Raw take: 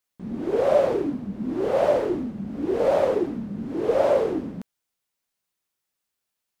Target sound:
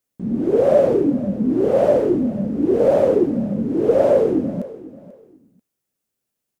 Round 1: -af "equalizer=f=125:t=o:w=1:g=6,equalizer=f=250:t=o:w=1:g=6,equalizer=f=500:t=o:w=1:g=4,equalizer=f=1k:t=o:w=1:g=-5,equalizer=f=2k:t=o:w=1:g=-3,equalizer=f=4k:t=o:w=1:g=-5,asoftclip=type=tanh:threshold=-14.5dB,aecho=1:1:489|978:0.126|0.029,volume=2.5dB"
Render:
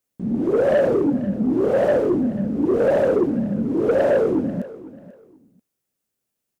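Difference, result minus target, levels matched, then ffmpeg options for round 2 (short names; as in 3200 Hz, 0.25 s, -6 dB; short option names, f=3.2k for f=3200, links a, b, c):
soft clip: distortion +17 dB
-af "equalizer=f=125:t=o:w=1:g=6,equalizer=f=250:t=o:w=1:g=6,equalizer=f=500:t=o:w=1:g=4,equalizer=f=1k:t=o:w=1:g=-5,equalizer=f=2k:t=o:w=1:g=-3,equalizer=f=4k:t=o:w=1:g=-5,asoftclip=type=tanh:threshold=-3.5dB,aecho=1:1:489|978:0.126|0.029,volume=2.5dB"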